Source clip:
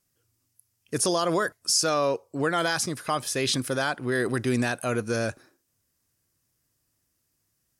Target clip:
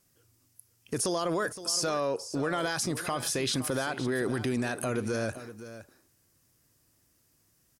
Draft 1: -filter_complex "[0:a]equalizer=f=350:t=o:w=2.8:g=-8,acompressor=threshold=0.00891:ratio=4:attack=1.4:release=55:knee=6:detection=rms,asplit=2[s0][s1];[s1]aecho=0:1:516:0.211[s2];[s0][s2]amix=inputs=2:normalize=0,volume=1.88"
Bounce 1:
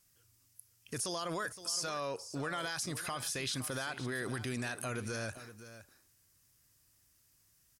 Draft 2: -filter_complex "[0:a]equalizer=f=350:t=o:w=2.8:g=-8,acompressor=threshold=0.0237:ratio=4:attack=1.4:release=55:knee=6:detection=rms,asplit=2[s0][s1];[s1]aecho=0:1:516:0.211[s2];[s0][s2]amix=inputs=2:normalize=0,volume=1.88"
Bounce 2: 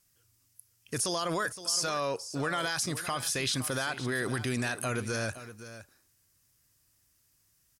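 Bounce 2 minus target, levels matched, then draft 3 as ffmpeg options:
250 Hz band -3.0 dB
-filter_complex "[0:a]equalizer=f=350:t=o:w=2.8:g=2.5,acompressor=threshold=0.0237:ratio=4:attack=1.4:release=55:knee=6:detection=rms,asplit=2[s0][s1];[s1]aecho=0:1:516:0.211[s2];[s0][s2]amix=inputs=2:normalize=0,volume=1.88"

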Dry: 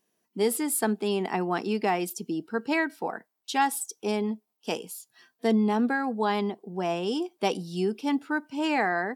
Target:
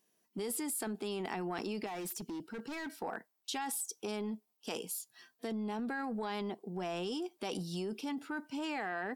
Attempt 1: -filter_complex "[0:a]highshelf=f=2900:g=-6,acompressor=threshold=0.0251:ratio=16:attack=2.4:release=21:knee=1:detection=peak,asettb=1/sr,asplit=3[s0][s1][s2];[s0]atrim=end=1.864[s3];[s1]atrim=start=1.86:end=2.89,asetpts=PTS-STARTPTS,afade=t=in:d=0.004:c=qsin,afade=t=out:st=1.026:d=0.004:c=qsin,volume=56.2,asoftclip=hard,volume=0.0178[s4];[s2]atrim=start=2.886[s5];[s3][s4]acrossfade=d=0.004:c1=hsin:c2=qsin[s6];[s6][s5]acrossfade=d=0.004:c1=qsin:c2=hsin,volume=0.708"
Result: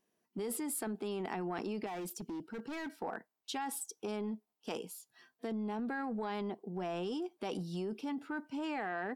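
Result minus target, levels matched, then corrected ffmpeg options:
4 kHz band -3.5 dB
-filter_complex "[0:a]highshelf=f=2900:g=4,acompressor=threshold=0.0251:ratio=16:attack=2.4:release=21:knee=1:detection=peak,asettb=1/sr,asplit=3[s0][s1][s2];[s0]atrim=end=1.864[s3];[s1]atrim=start=1.86:end=2.89,asetpts=PTS-STARTPTS,afade=t=in:d=0.004:c=qsin,afade=t=out:st=1.026:d=0.004:c=qsin,volume=56.2,asoftclip=hard,volume=0.0178[s4];[s2]atrim=start=2.886[s5];[s3][s4]acrossfade=d=0.004:c1=hsin:c2=qsin[s6];[s6][s5]acrossfade=d=0.004:c1=qsin:c2=hsin,volume=0.708"

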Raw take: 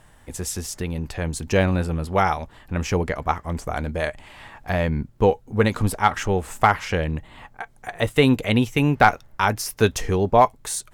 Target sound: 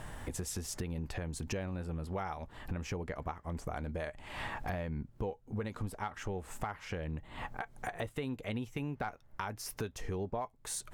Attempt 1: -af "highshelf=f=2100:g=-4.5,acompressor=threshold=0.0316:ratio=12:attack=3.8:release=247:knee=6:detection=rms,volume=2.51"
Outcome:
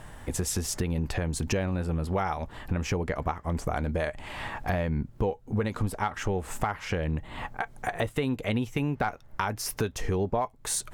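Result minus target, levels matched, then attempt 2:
compression: peak gain reduction -9.5 dB
-af "highshelf=f=2100:g=-4.5,acompressor=threshold=0.00944:ratio=12:attack=3.8:release=247:knee=6:detection=rms,volume=2.51"

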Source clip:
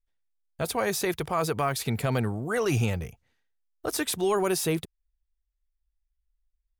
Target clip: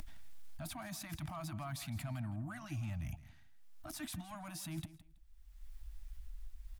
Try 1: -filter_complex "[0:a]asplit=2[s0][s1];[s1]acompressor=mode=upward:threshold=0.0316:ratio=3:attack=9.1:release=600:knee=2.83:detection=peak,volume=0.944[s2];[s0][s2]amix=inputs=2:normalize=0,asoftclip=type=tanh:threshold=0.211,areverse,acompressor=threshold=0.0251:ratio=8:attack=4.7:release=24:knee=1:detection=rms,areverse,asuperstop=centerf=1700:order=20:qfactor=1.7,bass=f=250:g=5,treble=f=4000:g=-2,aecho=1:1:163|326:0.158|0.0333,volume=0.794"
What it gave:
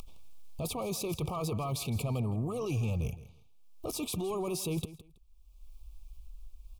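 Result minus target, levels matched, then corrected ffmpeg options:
compression: peak gain reduction -8.5 dB; 500 Hz band +7.5 dB
-filter_complex "[0:a]asplit=2[s0][s1];[s1]acompressor=mode=upward:threshold=0.0316:ratio=3:attack=9.1:release=600:knee=2.83:detection=peak,volume=0.944[s2];[s0][s2]amix=inputs=2:normalize=0,asoftclip=type=tanh:threshold=0.211,areverse,acompressor=threshold=0.00794:ratio=8:attack=4.7:release=24:knee=1:detection=rms,areverse,asuperstop=centerf=440:order=20:qfactor=1.7,bass=f=250:g=5,treble=f=4000:g=-2,aecho=1:1:163|326:0.158|0.0333,volume=0.794"

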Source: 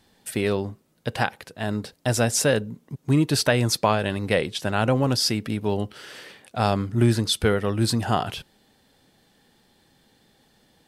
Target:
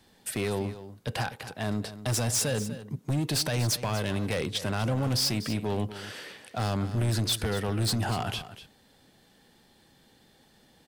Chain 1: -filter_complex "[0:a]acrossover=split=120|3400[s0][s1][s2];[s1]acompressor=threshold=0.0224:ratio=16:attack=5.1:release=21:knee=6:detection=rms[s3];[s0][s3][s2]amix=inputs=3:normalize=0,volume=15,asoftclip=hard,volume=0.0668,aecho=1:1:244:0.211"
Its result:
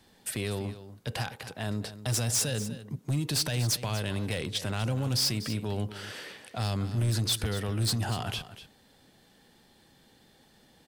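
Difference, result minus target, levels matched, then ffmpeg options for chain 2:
compression: peak gain reduction +6.5 dB
-filter_complex "[0:a]acrossover=split=120|3400[s0][s1][s2];[s1]acompressor=threshold=0.0501:ratio=16:attack=5.1:release=21:knee=6:detection=rms[s3];[s0][s3][s2]amix=inputs=3:normalize=0,volume=15,asoftclip=hard,volume=0.0668,aecho=1:1:244:0.211"

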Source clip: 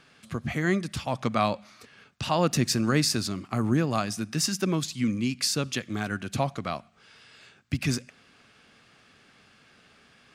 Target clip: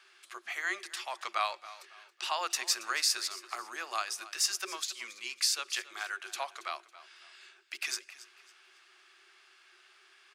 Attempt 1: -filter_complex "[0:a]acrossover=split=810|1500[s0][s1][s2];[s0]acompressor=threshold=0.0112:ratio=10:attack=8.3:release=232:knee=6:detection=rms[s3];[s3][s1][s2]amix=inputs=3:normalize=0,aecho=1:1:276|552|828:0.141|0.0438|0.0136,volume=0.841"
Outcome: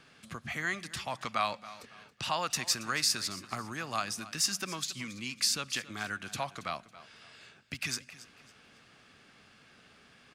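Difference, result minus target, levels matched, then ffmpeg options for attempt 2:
500 Hz band +3.5 dB
-filter_complex "[0:a]acrossover=split=810|1500[s0][s1][s2];[s0]acompressor=threshold=0.0112:ratio=10:attack=8.3:release=232:knee=6:detection=rms,asuperpass=centerf=370:order=12:qfactor=6[s3];[s3][s1][s2]amix=inputs=3:normalize=0,aecho=1:1:276|552|828:0.141|0.0438|0.0136,volume=0.841"

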